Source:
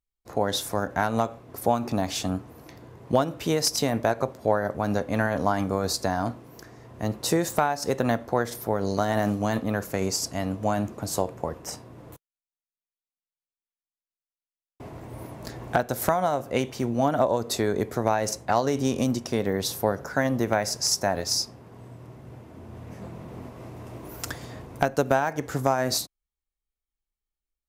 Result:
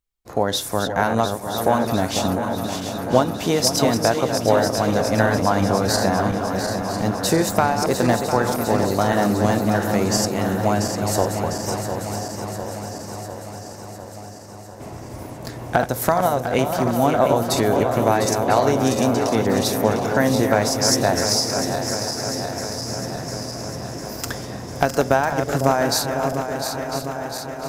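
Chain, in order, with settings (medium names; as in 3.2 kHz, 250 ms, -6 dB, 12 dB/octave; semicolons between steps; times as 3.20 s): backward echo that repeats 351 ms, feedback 81%, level -7.5 dB; echo whose repeats swap between lows and highs 500 ms, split 970 Hz, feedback 69%, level -9 dB; trim +4.5 dB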